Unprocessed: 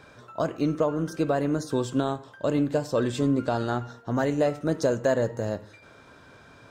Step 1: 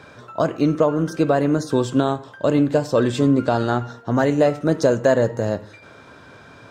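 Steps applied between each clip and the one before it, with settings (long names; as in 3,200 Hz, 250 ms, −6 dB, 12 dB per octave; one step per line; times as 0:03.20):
high-pass filter 64 Hz
high-shelf EQ 8,100 Hz −6 dB
level +7 dB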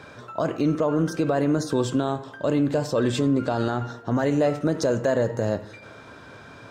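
brickwall limiter −13 dBFS, peak gain reduction 8 dB
on a send at −22.5 dB: convolution reverb RT60 1.9 s, pre-delay 3 ms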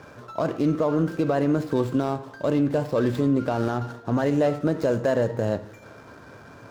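running median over 15 samples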